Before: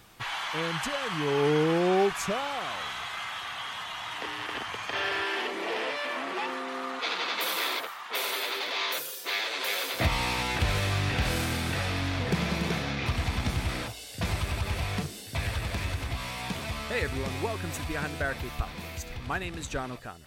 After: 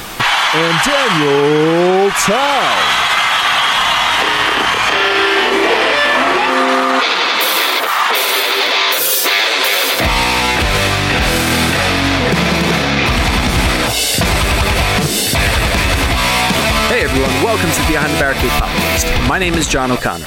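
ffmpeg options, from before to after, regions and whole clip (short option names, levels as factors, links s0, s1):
-filter_complex "[0:a]asettb=1/sr,asplit=3[s0][s1][s2];[s0]atrim=end=3.784[s3];[s1]atrim=start=3.78:end=6.5,asetpts=PTS-STARTPTS,afade=t=in:d=0.004:c=qsin,afade=t=out:st=2.716:d=0.004:c=qsin,aeval=exprs='val(0)+0.002*(sin(2*PI*50*n/s)+sin(2*PI*2*50*n/s)/2+sin(2*PI*3*50*n/s)/3+sin(2*PI*4*50*n/s)/4+sin(2*PI*5*50*n/s)/5)':c=same,asplit=2[s4][s5];[s5]adelay=28,volume=0.708[s6];[s4][s6]amix=inputs=2:normalize=0,atrim=end_sample=119952[s7];[s2]atrim=start=6.496[s8];[s3][s7]acrossfade=d=0.004:c1=hsin:c2=qsin[s9];[s9][s8]acrossfade=d=0.004:c1=qsin:c2=hsin,equalizer=f=96:t=o:w=1.1:g=-9,acompressor=threshold=0.0158:ratio=6,alimiter=level_in=37.6:limit=0.891:release=50:level=0:latency=1,volume=0.75"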